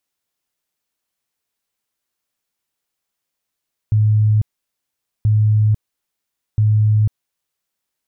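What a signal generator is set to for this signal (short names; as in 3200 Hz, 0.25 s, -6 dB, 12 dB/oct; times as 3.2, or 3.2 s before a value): tone bursts 107 Hz, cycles 53, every 1.33 s, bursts 3, -10.5 dBFS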